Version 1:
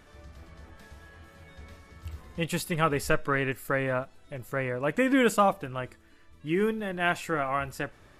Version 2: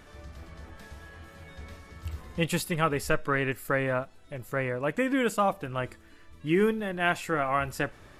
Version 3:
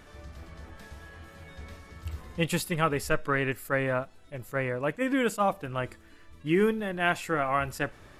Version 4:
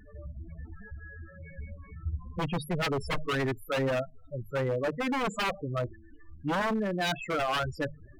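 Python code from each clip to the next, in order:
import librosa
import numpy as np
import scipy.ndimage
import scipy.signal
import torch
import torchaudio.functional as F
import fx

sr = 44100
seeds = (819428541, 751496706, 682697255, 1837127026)

y1 = fx.rider(x, sr, range_db=4, speed_s=0.5)
y2 = fx.attack_slew(y1, sr, db_per_s=450.0)
y3 = fx.hum_notches(y2, sr, base_hz=50, count=3)
y3 = fx.spec_topn(y3, sr, count=8)
y3 = 10.0 ** (-27.5 / 20.0) * (np.abs((y3 / 10.0 ** (-27.5 / 20.0) + 3.0) % 4.0 - 2.0) - 1.0)
y3 = y3 * librosa.db_to_amplitude(4.0)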